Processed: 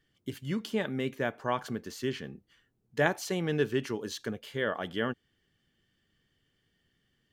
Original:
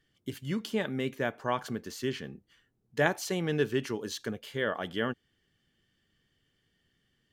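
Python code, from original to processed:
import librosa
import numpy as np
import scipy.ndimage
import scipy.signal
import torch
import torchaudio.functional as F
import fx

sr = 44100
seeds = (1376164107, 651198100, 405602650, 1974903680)

y = fx.peak_eq(x, sr, hz=13000.0, db=-2.0, octaves=2.4)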